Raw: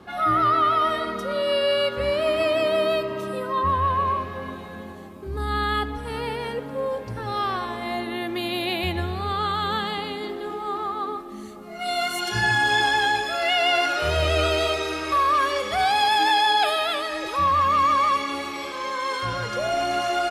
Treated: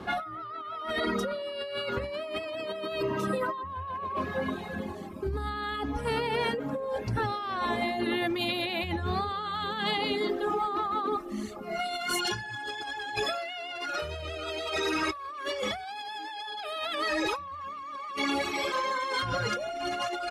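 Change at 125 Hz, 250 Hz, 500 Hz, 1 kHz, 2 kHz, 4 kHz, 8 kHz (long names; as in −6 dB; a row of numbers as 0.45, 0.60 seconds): −6.5, −2.5, −7.0, −10.0, −8.0, −8.0, −5.5 decibels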